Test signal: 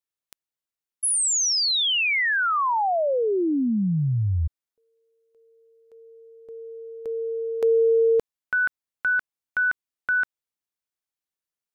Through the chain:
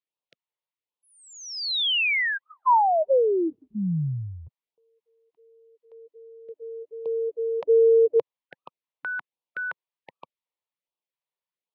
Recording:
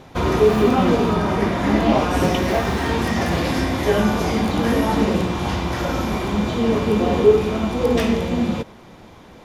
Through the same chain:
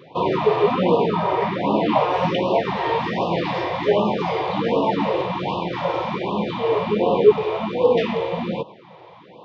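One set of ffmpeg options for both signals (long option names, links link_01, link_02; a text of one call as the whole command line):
ffmpeg -i in.wav -af "highpass=frequency=140:width=0.5412,highpass=frequency=140:width=1.3066,equalizer=frequency=240:width_type=q:width=4:gain=-10,equalizer=frequency=520:width_type=q:width=4:gain=5,equalizer=frequency=960:width_type=q:width=4:gain=7,equalizer=frequency=1500:width_type=q:width=4:gain=-9,lowpass=frequency=3800:width=0.5412,lowpass=frequency=3800:width=1.3066,afftfilt=real='re*(1-between(b*sr/1024,210*pow(1800/210,0.5+0.5*sin(2*PI*1.3*pts/sr))/1.41,210*pow(1800/210,0.5+0.5*sin(2*PI*1.3*pts/sr))*1.41))':imag='im*(1-between(b*sr/1024,210*pow(1800/210,0.5+0.5*sin(2*PI*1.3*pts/sr))/1.41,210*pow(1800/210,0.5+0.5*sin(2*PI*1.3*pts/sr))*1.41))':win_size=1024:overlap=0.75" out.wav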